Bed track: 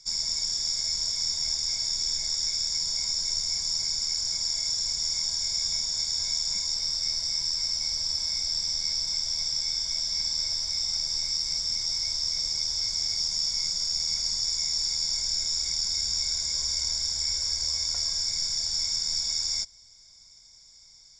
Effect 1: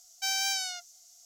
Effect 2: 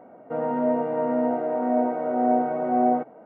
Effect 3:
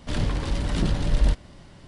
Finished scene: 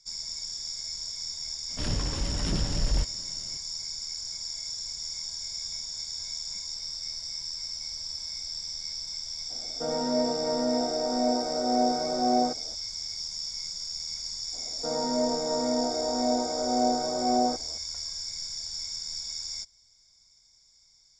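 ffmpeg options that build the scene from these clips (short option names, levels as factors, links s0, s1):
-filter_complex "[2:a]asplit=2[s0][s1];[0:a]volume=0.422[s2];[3:a]asoftclip=type=hard:threshold=0.188[s3];[s0]bandreject=f=1000:w=8.2[s4];[s1]highpass=120,lowpass=2200[s5];[s3]atrim=end=1.87,asetpts=PTS-STARTPTS,volume=0.562,afade=t=in:d=0.004:c=hsin,afade=t=out:st=1.866:d=0.004:c=hsin,adelay=1700[s6];[s4]atrim=end=3.25,asetpts=PTS-STARTPTS,volume=0.668,afade=t=in:d=0.004:c=hsin,afade=t=out:st=3.246:d=0.004:c=hsin,adelay=9500[s7];[s5]atrim=end=3.25,asetpts=PTS-STARTPTS,volume=0.631,afade=t=in:d=0.004:c=hsin,afade=t=out:st=3.246:d=0.004:c=hsin,adelay=14530[s8];[s2][s6][s7][s8]amix=inputs=4:normalize=0"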